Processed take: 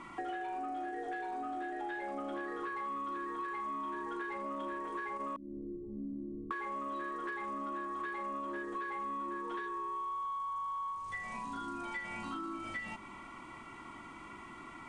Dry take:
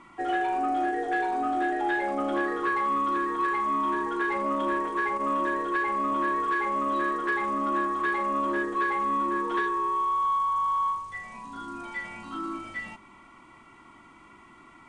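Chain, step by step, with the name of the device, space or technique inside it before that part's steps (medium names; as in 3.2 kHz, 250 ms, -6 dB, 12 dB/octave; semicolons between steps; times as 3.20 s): 5.36–6.51 s: inverse Chebyshev low-pass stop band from 1.5 kHz, stop band 80 dB; serial compression, leveller first (compression 1.5:1, threshold -37 dBFS, peak gain reduction 5.5 dB; compression 5:1, threshold -41 dBFS, peak gain reduction 12 dB); trim +3 dB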